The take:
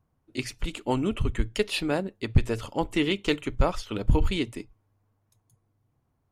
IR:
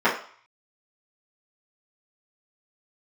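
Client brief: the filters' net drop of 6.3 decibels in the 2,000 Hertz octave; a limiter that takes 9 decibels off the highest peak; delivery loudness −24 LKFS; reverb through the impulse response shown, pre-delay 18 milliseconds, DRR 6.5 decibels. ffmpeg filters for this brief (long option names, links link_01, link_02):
-filter_complex "[0:a]equalizer=frequency=2000:width_type=o:gain=-8.5,alimiter=limit=-17.5dB:level=0:latency=1,asplit=2[link_01][link_02];[1:a]atrim=start_sample=2205,adelay=18[link_03];[link_02][link_03]afir=irnorm=-1:irlink=0,volume=-26dB[link_04];[link_01][link_04]amix=inputs=2:normalize=0,volume=7dB"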